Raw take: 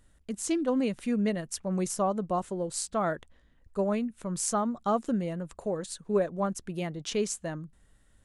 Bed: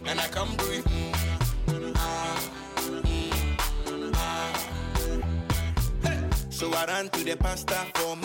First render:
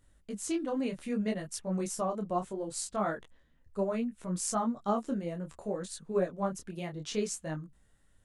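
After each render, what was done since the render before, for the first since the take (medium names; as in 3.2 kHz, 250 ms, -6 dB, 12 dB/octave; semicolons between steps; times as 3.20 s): short-mantissa float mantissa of 8-bit; detune thickener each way 23 cents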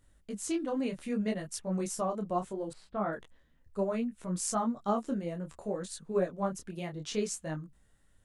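2.73–3.13 s: distance through air 440 m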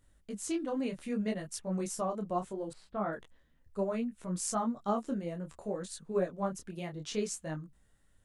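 trim -1.5 dB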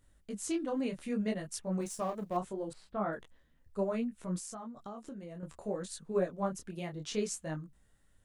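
1.81–2.37 s: companding laws mixed up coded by A; 4.38–5.43 s: compression 8:1, threshold -41 dBFS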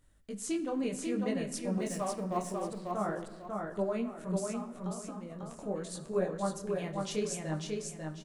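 feedback delay 545 ms, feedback 29%, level -3.5 dB; simulated room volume 1300 m³, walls mixed, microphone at 0.48 m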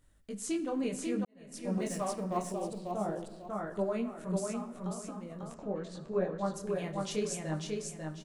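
1.25–1.71 s: fade in quadratic; 2.52–3.50 s: high-order bell 1.5 kHz -8.5 dB 1.2 oct; 5.54–6.54 s: distance through air 140 m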